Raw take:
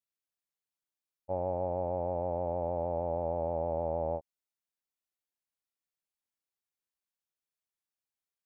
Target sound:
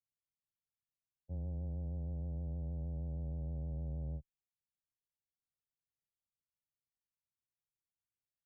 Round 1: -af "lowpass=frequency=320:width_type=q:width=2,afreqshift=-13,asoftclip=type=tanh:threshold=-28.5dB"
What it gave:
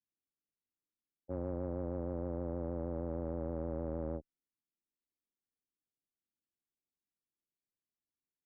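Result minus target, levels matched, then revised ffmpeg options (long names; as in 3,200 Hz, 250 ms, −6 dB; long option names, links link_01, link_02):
125 Hz band −5.0 dB
-af "lowpass=frequency=140:width_type=q:width=2,afreqshift=-13,asoftclip=type=tanh:threshold=-28.5dB"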